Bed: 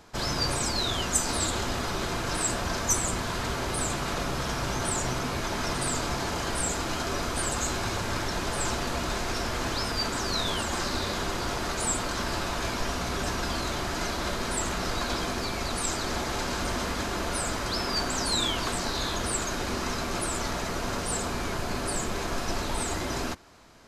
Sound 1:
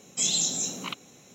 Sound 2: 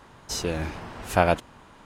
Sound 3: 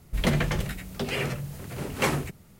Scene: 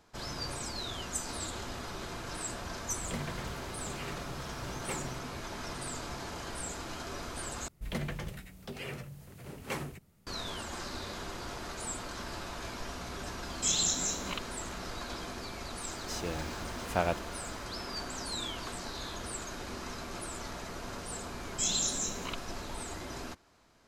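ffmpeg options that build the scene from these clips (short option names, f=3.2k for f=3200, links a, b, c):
-filter_complex "[3:a]asplit=2[a][b];[1:a]asplit=2[c][d];[0:a]volume=-10.5dB[e];[a]highpass=41[f];[c]tremolo=f=270:d=0.519[g];[2:a]acrusher=bits=7:mix=0:aa=0.000001[h];[e]asplit=2[i][j];[i]atrim=end=7.684[k];[b]atrim=end=2.59,asetpts=PTS-STARTPTS,volume=-12dB[l];[j]atrim=start=10.266[m];[f]atrim=end=2.59,asetpts=PTS-STARTPTS,volume=-15dB,afade=t=in:d=0.004:c=hsin,afade=t=out:st=2.586:d=0.004:c=hsin,adelay=2870[n];[g]atrim=end=1.34,asetpts=PTS-STARTPTS,volume=-1.5dB,afade=t=in:d=0.004:c=hsin,afade=t=out:st=1.336:d=0.004:c=hsin,adelay=13450[o];[h]atrim=end=1.85,asetpts=PTS-STARTPTS,volume=-9.5dB,afade=t=in:d=0.004:c=hsin,afade=t=out:st=1.846:d=0.004:c=hsin,adelay=15790[p];[d]atrim=end=1.34,asetpts=PTS-STARTPTS,volume=-5.5dB,afade=t=in:d=0.004:c=hsin,afade=t=out:st=1.336:d=0.004:c=hsin,adelay=21410[q];[k][l]acrossfade=d=0.004:c1=hsin:c2=hsin[r];[r][m]acrossfade=d=0.004:c1=hsin:c2=hsin[s];[s][n][o][p][q]amix=inputs=5:normalize=0"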